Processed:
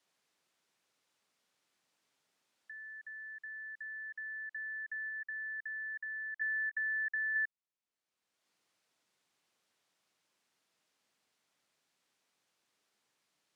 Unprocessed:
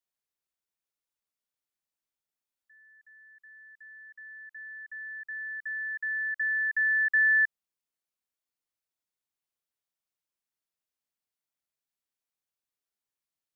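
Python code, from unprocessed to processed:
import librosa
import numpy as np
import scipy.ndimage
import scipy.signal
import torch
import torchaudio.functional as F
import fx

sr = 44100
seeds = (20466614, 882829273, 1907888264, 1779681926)

y = fx.level_steps(x, sr, step_db=14, at=(5.09, 7.36))
y = fx.air_absorb(y, sr, metres=58.0)
y = fx.band_squash(y, sr, depth_pct=70)
y = y * 10.0 ** (-5.0 / 20.0)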